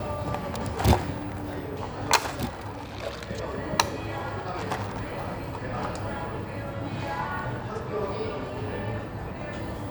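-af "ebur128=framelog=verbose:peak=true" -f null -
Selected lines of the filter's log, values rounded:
Integrated loudness:
  I:         -30.6 LUFS
  Threshold: -40.6 LUFS
Loudness range:
  LRA:         4.0 LU
  Threshold: -50.9 LUFS
  LRA low:   -32.6 LUFS
  LRA high:  -28.7 LUFS
True peak:
  Peak:       -1.3 dBFS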